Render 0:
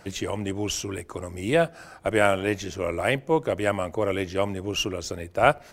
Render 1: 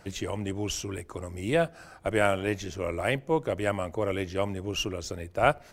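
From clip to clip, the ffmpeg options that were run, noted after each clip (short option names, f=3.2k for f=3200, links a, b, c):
-af "lowshelf=f=96:g=6,volume=-4dB"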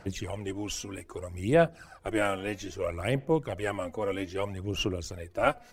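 -af "aphaser=in_gain=1:out_gain=1:delay=4.1:decay=0.57:speed=0.62:type=sinusoidal,volume=-4dB"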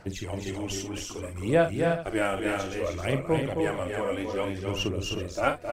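-af "aecho=1:1:45|265|306|383:0.335|0.531|0.562|0.188"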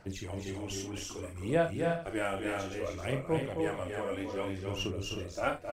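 -filter_complex "[0:a]areverse,acompressor=mode=upward:threshold=-30dB:ratio=2.5,areverse,asplit=2[a][b];[b]adelay=31,volume=-9dB[c];[a][c]amix=inputs=2:normalize=0,volume=-6.5dB"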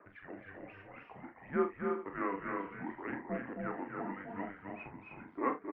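-af "highpass=450,highpass=f=580:t=q:w=0.5412,highpass=f=580:t=q:w=1.307,lowpass=f=2.2k:t=q:w=0.5176,lowpass=f=2.2k:t=q:w=0.7071,lowpass=f=2.2k:t=q:w=1.932,afreqshift=-290,volume=1dB"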